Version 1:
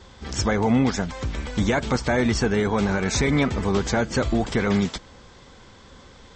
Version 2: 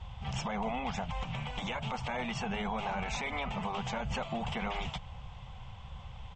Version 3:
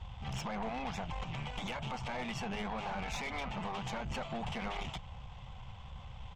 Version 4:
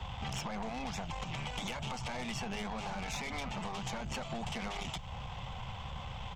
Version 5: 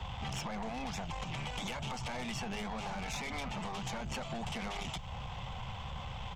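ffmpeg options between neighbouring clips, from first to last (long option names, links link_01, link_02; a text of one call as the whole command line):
ffmpeg -i in.wav -af "firequalizer=gain_entry='entry(140,0);entry(290,-30);entry(750,-3);entry(1600,-18);entry(2800,-3);entry(4200,-21)':delay=0.05:min_phase=1,afftfilt=real='re*lt(hypot(re,im),0.158)':imag='im*lt(hypot(re,im),0.158)':win_size=1024:overlap=0.75,alimiter=level_in=8dB:limit=-24dB:level=0:latency=1:release=92,volume=-8dB,volume=6dB" out.wav
ffmpeg -i in.wav -af "aeval=exprs='(tanh(44.7*val(0)+0.4)-tanh(0.4))/44.7':channel_layout=same" out.wav
ffmpeg -i in.wav -filter_complex "[0:a]acrossover=split=93|240|4800[link_01][link_02][link_03][link_04];[link_01]acompressor=threshold=-56dB:ratio=4[link_05];[link_02]acompressor=threshold=-56dB:ratio=4[link_06];[link_03]acompressor=threshold=-51dB:ratio=4[link_07];[link_04]acompressor=threshold=-55dB:ratio=4[link_08];[link_05][link_06][link_07][link_08]amix=inputs=4:normalize=0,volume=10dB" out.wav
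ffmpeg -i in.wav -af "asoftclip=type=tanh:threshold=-30.5dB,volume=1dB" out.wav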